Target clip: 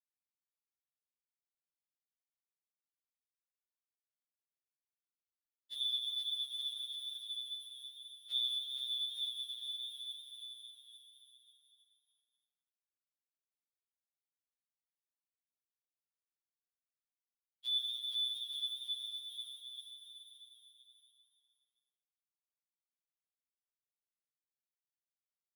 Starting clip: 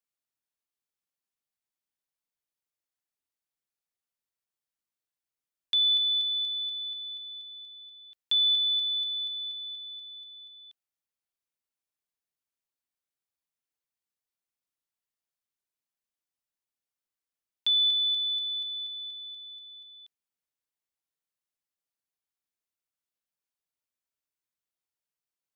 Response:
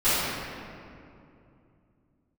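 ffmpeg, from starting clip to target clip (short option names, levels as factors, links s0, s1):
-filter_complex "[0:a]highshelf=f=3300:g=9,asplit=2[s0][s1];[s1]aecho=0:1:802|1604|2406|3208:0.168|0.0755|0.034|0.0153[s2];[s0][s2]amix=inputs=2:normalize=0,afftfilt=real='hypot(re,im)*cos(2*PI*random(0))':imag='hypot(re,im)*sin(2*PI*random(1))':win_size=512:overlap=0.75,aeval=exprs='sgn(val(0))*max(abs(val(0))-0.00794,0)':c=same,asplit=2[s3][s4];[s4]aecho=0:1:470|869.5|1209|1498|1743:0.631|0.398|0.251|0.158|0.1[s5];[s3][s5]amix=inputs=2:normalize=0,afftfilt=real='re*2.45*eq(mod(b,6),0)':imag='im*2.45*eq(mod(b,6),0)':win_size=2048:overlap=0.75,volume=0.398"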